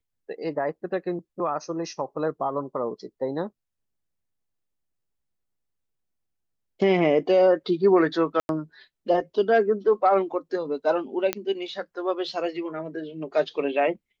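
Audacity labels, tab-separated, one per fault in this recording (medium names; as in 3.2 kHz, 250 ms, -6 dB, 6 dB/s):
8.400000	8.490000	dropout 91 ms
11.330000	11.330000	pop -9 dBFS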